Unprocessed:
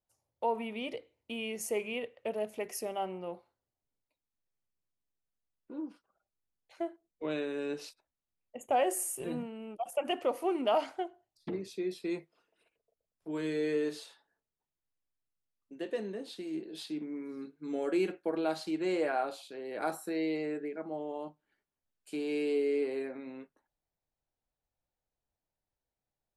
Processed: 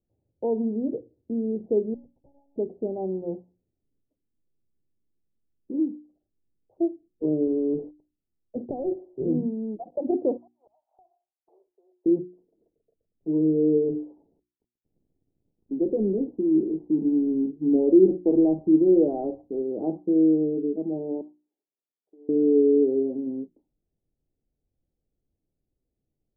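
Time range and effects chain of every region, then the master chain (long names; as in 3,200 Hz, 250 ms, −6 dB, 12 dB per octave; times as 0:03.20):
0:01.94–0:02.56: pair of resonant band-passes 320 Hz, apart 2.8 octaves + downward compressor 8 to 1, threshold −59 dBFS + one-pitch LPC vocoder at 8 kHz 280 Hz
0:07.47–0:08.96: downward compressor 5 to 1, threshold −38 dBFS + leveller curve on the samples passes 2
0:10.37–0:12.06: Butterworth high-pass 750 Hz + gate with flip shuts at −31 dBFS, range −32 dB + downward compressor 10 to 1, threshold −52 dBFS
0:13.88–0:19.62: mu-law and A-law mismatch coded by mu + moving average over 5 samples
0:21.21–0:22.29: high-pass filter 900 Hz + downward compressor 5 to 1, threshold −56 dBFS
whole clip: Butterworth low-pass 820 Hz 48 dB per octave; low shelf with overshoot 500 Hz +12.5 dB, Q 1.5; mains-hum notches 60/120/180/240/300/360 Hz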